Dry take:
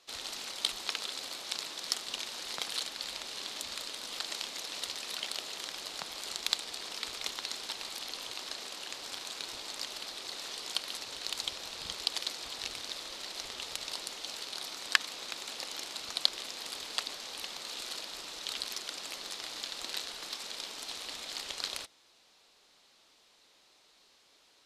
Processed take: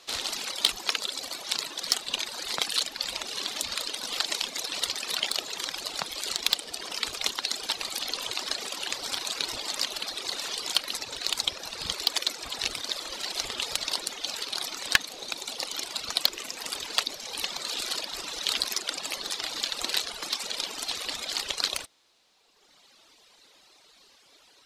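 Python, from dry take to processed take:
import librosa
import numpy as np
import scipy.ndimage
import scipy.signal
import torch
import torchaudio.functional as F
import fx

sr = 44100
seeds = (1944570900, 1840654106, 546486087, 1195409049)

p1 = fx.dereverb_blind(x, sr, rt60_s=1.8)
p2 = fx.rider(p1, sr, range_db=10, speed_s=2.0)
p3 = p1 + (p2 * 10.0 ** (2.0 / 20.0))
p4 = 10.0 ** (-10.0 / 20.0) * np.tanh(p3 / 10.0 ** (-10.0 / 20.0))
y = p4 * 10.0 ** (3.0 / 20.0)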